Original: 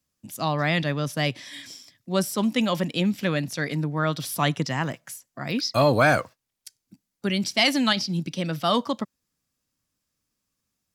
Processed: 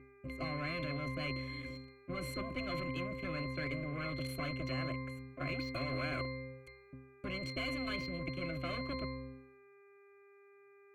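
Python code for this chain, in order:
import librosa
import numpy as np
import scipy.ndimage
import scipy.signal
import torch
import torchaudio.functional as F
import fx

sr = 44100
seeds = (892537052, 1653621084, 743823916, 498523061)

y = scipy.signal.sosfilt(scipy.signal.butter(2, 59.0, 'highpass', fs=sr, output='sos'), x)
y = fx.notch(y, sr, hz=1200.0, q=8.5)
y = fx.leveller(y, sr, passes=5)
y = fx.level_steps(y, sr, step_db=16)
y = fx.dmg_buzz(y, sr, base_hz=400.0, harmonics=6, level_db=-43.0, tilt_db=-4, odd_only=False)
y = fx.fixed_phaser(y, sr, hz=2200.0, stages=4)
y = fx.octave_resonator(y, sr, note='C', decay_s=0.56)
y = fx.spectral_comp(y, sr, ratio=4.0)
y = F.gain(torch.from_numpy(y), -7.0).numpy()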